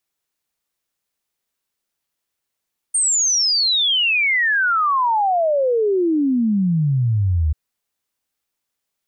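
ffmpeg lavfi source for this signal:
ffmpeg -f lavfi -i "aevalsrc='0.188*clip(min(t,4.59-t)/0.01,0,1)*sin(2*PI*8900*4.59/log(73/8900)*(exp(log(73/8900)*t/4.59)-1))':duration=4.59:sample_rate=44100" out.wav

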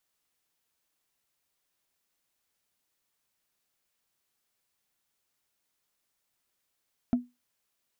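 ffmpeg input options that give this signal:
ffmpeg -f lavfi -i "aevalsrc='0.133*pow(10,-3*t/0.22)*sin(2*PI*245*t)+0.0335*pow(10,-3*t/0.065)*sin(2*PI*675.5*t)+0.00841*pow(10,-3*t/0.029)*sin(2*PI*1324*t)+0.00211*pow(10,-3*t/0.016)*sin(2*PI*2188.6*t)+0.000531*pow(10,-3*t/0.01)*sin(2*PI*3268.3*t)':duration=0.45:sample_rate=44100" out.wav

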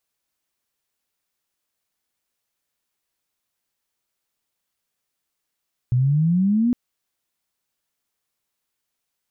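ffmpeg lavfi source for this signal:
ffmpeg -f lavfi -i "aevalsrc='pow(10,(-15-0.5*t/0.81)/20)*sin(2*PI*120*0.81/log(250/120)*(exp(log(250/120)*t/0.81)-1))':duration=0.81:sample_rate=44100" out.wav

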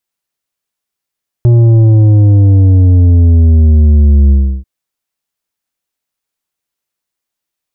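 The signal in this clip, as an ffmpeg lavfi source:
ffmpeg -f lavfi -i "aevalsrc='0.631*clip((3.19-t)/0.33,0,1)*tanh(2.51*sin(2*PI*120*3.19/log(65/120)*(exp(log(65/120)*t/3.19)-1)))/tanh(2.51)':duration=3.19:sample_rate=44100" out.wav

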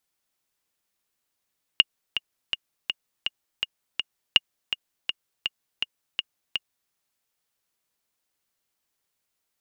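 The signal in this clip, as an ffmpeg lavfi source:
ffmpeg -f lavfi -i "aevalsrc='pow(10,(-1.5-10.5*gte(mod(t,7*60/164),60/164))/20)*sin(2*PI*2850*mod(t,60/164))*exp(-6.91*mod(t,60/164)/0.03)':duration=5.12:sample_rate=44100" out.wav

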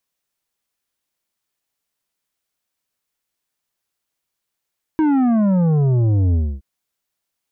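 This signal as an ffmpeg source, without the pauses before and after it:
ffmpeg -f lavfi -i "aevalsrc='0.2*clip((1.62-t)/0.27,0,1)*tanh(2.82*sin(2*PI*320*1.62/log(65/320)*(exp(log(65/320)*t/1.62)-1)))/tanh(2.82)':duration=1.62:sample_rate=44100" out.wav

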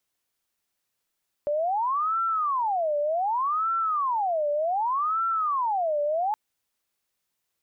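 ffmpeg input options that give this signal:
ffmpeg -f lavfi -i "aevalsrc='0.075*sin(2*PI*(967*t-383/(2*PI*0.66)*sin(2*PI*0.66*t)))':duration=4.87:sample_rate=44100" out.wav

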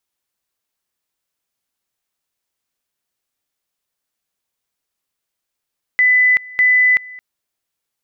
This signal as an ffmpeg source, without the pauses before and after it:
ffmpeg -f lavfi -i "aevalsrc='pow(10,(-9-22.5*gte(mod(t,0.6),0.38))/20)*sin(2*PI*2000*t)':duration=1.2:sample_rate=44100" out.wav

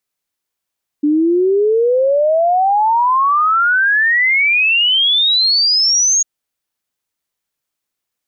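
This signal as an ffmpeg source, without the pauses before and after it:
ffmpeg -f lavfi -i "aevalsrc='0.316*clip(min(t,5.2-t)/0.01,0,1)*sin(2*PI*290*5.2/log(6700/290)*(exp(log(6700/290)*t/5.2)-1))':duration=5.2:sample_rate=44100" out.wav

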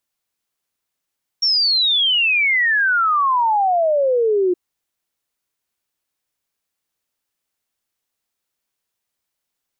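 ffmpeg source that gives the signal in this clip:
ffmpeg -f lavfi -i "aevalsrc='0.211*clip(min(t,3.12-t)/0.01,0,1)*sin(2*PI*5600*3.12/log(350/5600)*(exp(log(350/5600)*t/3.12)-1))':duration=3.12:sample_rate=44100" out.wav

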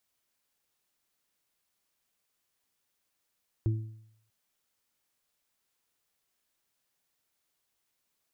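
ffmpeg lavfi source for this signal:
ffmpeg -f lavfi -i "aevalsrc='0.0794*pow(10,-3*t/0.71)*sin(2*PI*110*t)+0.01*pow(10,-3*t/0.59)*sin(2*PI*220*t)+0.0251*pow(10,-3*t/0.49)*sin(2*PI*330*t)':duration=0.64:sample_rate=44100" out.wav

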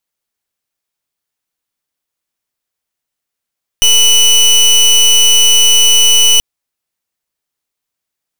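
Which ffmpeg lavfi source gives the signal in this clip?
ffmpeg -f lavfi -i "aevalsrc='0.447*(2*lt(mod(2970*t,1),0.25)-1)':duration=2.58:sample_rate=44100" out.wav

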